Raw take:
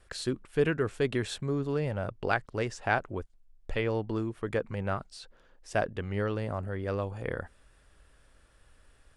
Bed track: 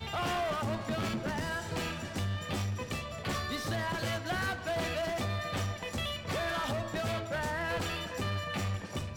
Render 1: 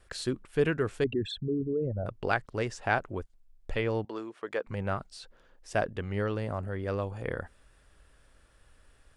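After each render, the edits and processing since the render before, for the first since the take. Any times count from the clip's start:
0:01.04–0:02.06: spectral envelope exaggerated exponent 3
0:04.05–0:04.67: band-pass filter 430–7,200 Hz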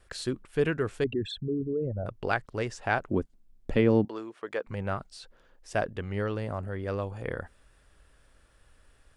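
0:03.11–0:04.08: parametric band 230 Hz +14 dB 1.8 octaves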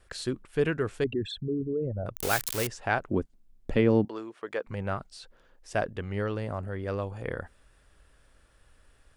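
0:02.15–0:02.67: spike at every zero crossing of −17.5 dBFS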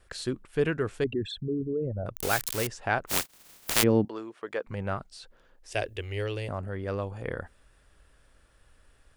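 0:03.07–0:03.82: compressing power law on the bin magnitudes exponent 0.1
0:05.72–0:06.49: drawn EQ curve 110 Hz 0 dB, 160 Hz −21 dB, 370 Hz +1 dB, 1,300 Hz −8 dB, 2,600 Hz +9 dB, 4,500 Hz +5 dB, 16,000 Hz +11 dB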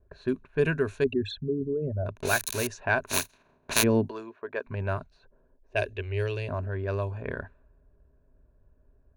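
low-pass that shuts in the quiet parts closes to 450 Hz, open at −26 dBFS
EQ curve with evenly spaced ripples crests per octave 1.5, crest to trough 10 dB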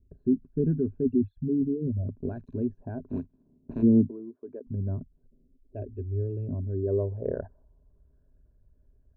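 spectral envelope exaggerated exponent 1.5
low-pass filter sweep 260 Hz → 2,500 Hz, 0:06.55–0:08.66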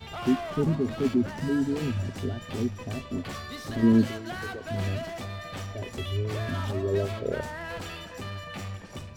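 mix in bed track −3 dB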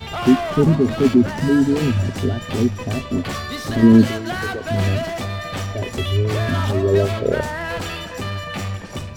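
level +10.5 dB
brickwall limiter −3 dBFS, peak gain reduction 2.5 dB

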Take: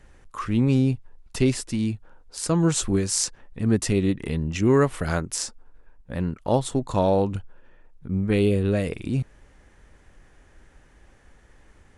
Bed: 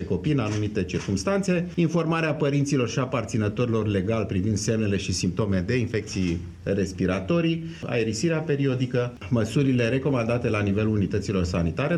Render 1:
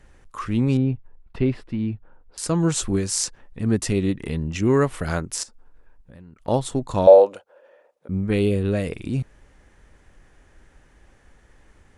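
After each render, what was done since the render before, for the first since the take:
0:00.77–0:02.38: high-frequency loss of the air 420 metres
0:05.43–0:06.48: downward compressor, threshold −42 dBFS
0:07.07–0:08.09: high-pass with resonance 550 Hz, resonance Q 6.8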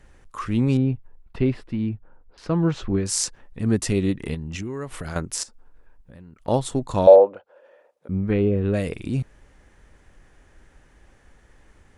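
0:01.89–0:03.06: high-frequency loss of the air 280 metres
0:04.34–0:05.16: downward compressor 8 to 1, threshold −27 dBFS
0:07.15–0:08.74: treble cut that deepens with the level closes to 1,400 Hz, closed at −15.5 dBFS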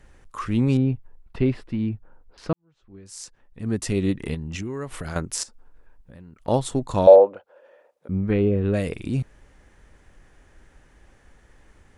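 0:02.53–0:04.10: fade in quadratic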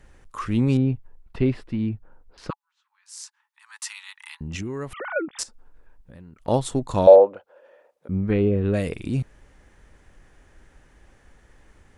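0:02.50–0:04.41: Chebyshev high-pass filter 850 Hz, order 8
0:04.93–0:05.39: three sine waves on the formant tracks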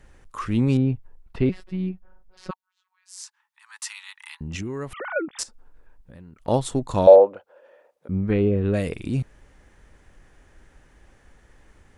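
0:01.49–0:03.18: phases set to zero 185 Hz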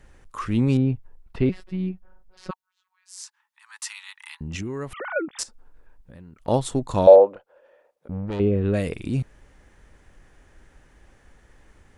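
0:07.35–0:08.40: tube saturation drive 26 dB, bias 0.65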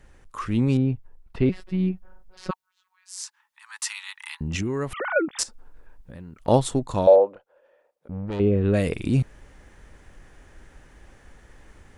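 speech leveller within 4 dB 0.5 s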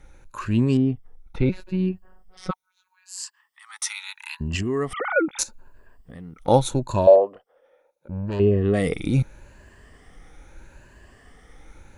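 rippled gain that drifts along the octave scale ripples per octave 1.4, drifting +0.77 Hz, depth 11 dB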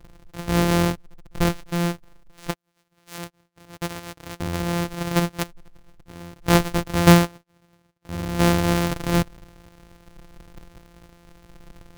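samples sorted by size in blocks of 256 samples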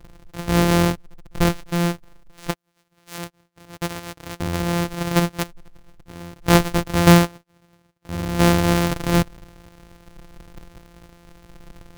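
level +2.5 dB
brickwall limiter −3 dBFS, peak gain reduction 2.5 dB

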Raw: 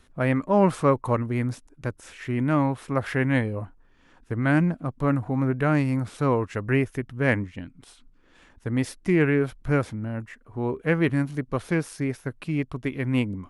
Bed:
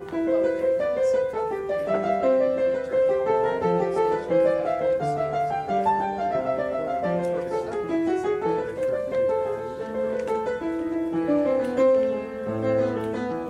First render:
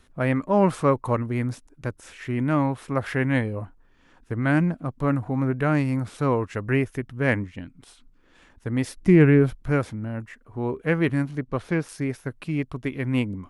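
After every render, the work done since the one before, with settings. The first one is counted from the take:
0:08.97–0:09.55: low-shelf EQ 340 Hz +9.5 dB
0:11.26–0:11.89: high-shelf EQ 7,600 Hz −12 dB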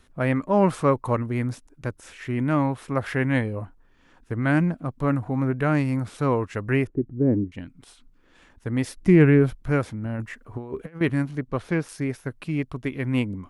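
0:06.87–0:07.52: low-pass with resonance 340 Hz, resonance Q 2.7
0:10.05–0:11.01: compressor whose output falls as the input rises −31 dBFS, ratio −0.5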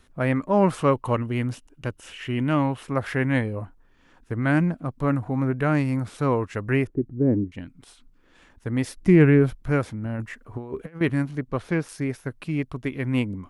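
0:00.78–0:02.83: parametric band 2,900 Hz +13 dB 0.24 octaves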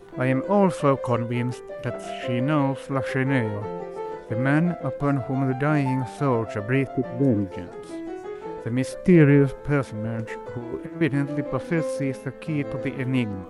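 mix in bed −10 dB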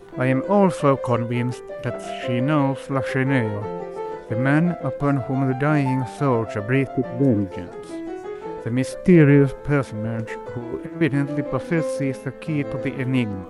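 level +2.5 dB
brickwall limiter −3 dBFS, peak gain reduction 1.5 dB

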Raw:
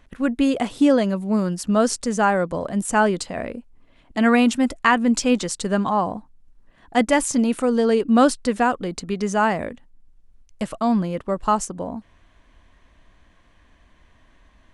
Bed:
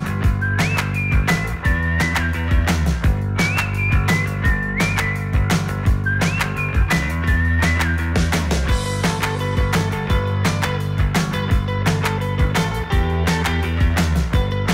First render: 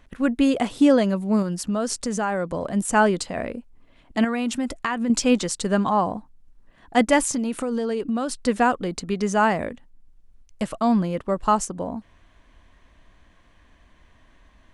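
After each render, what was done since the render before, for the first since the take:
0:01.42–0:02.67: downward compressor 3 to 1, threshold −22 dBFS
0:04.24–0:05.10: downward compressor, threshold −21 dBFS
0:07.28–0:08.41: downward compressor 10 to 1, threshold −21 dBFS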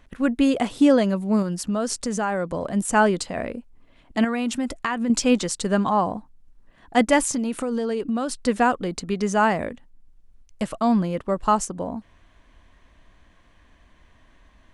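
no processing that can be heard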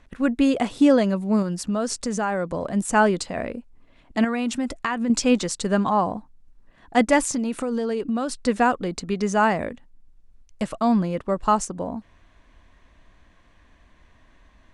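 low-pass filter 9,800 Hz 12 dB per octave
notch filter 3,100 Hz, Q 25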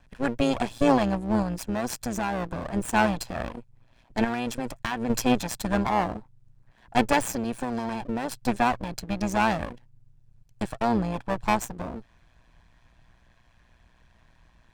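lower of the sound and its delayed copy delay 1.2 ms
amplitude modulation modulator 120 Hz, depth 50%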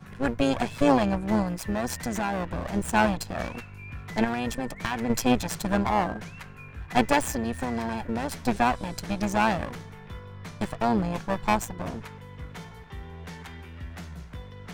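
mix in bed −22.5 dB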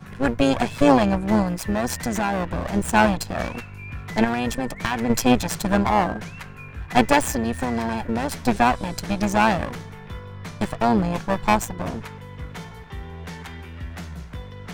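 level +5 dB

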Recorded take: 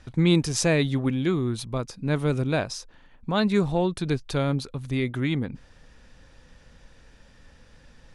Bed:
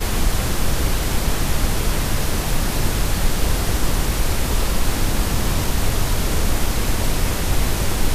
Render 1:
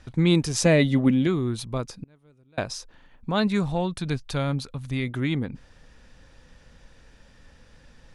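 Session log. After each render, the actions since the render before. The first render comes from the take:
0:00.65–0:01.27: hollow resonant body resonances 220/570/2,000/2,900 Hz, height 11 dB
0:02.03–0:02.58: gate with flip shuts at −29 dBFS, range −33 dB
0:03.47–0:05.07: parametric band 380 Hz −6.5 dB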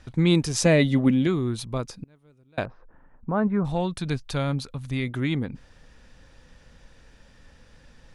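0:02.65–0:03.65: low-pass filter 1,500 Hz 24 dB per octave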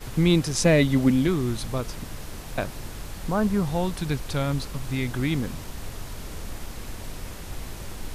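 mix in bed −16.5 dB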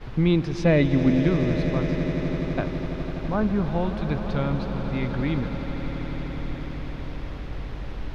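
high-frequency loss of the air 280 metres
echo that builds up and dies away 83 ms, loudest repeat 8, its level −14.5 dB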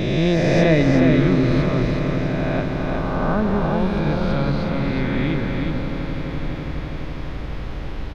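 peak hold with a rise ahead of every peak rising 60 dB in 2.62 s
on a send: single-tap delay 365 ms −4 dB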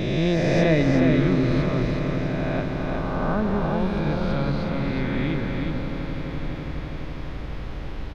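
level −3.5 dB

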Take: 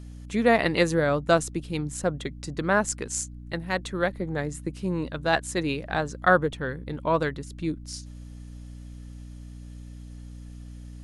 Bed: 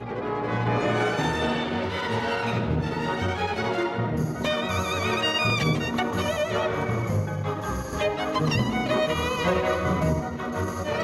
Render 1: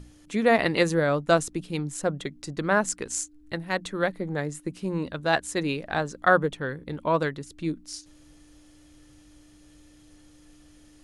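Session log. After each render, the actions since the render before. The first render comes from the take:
mains-hum notches 60/120/180/240 Hz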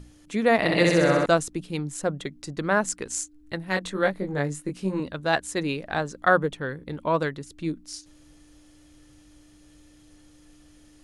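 0:00.56–0:01.26: flutter between parallel walls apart 11 metres, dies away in 1.5 s
0:03.66–0:05.00: double-tracking delay 21 ms −3 dB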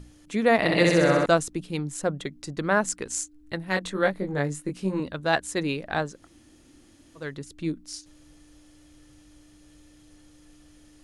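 0:06.15–0:07.27: fill with room tone, crossfade 0.24 s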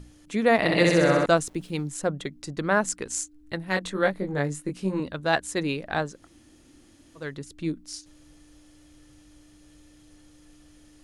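0:01.40–0:01.88: centre clipping without the shift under −52 dBFS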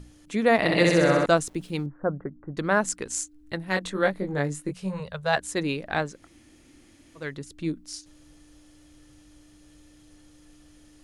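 0:01.86–0:02.57: Butterworth low-pass 1,600 Hz 48 dB per octave
0:04.71–0:05.37: Chebyshev band-stop filter 180–480 Hz
0:05.93–0:07.33: parametric band 2,200 Hz +6.5 dB 0.43 octaves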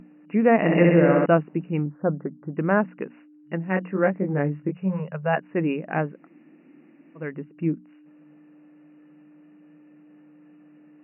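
brick-wall band-pass 140–2,900 Hz
spectral tilt −2.5 dB per octave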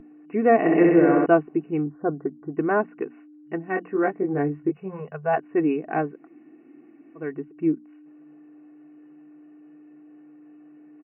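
high-shelf EQ 2,200 Hz −11 dB
comb filter 2.7 ms, depth 79%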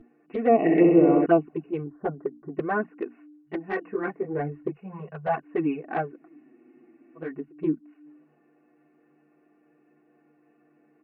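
flanger swept by the level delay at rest 9.2 ms, full sweep at −14 dBFS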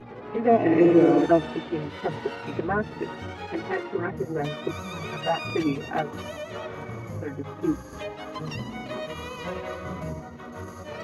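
mix in bed −10 dB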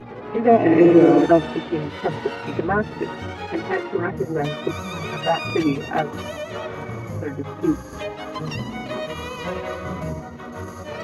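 level +5 dB
brickwall limiter −3 dBFS, peak gain reduction 1 dB

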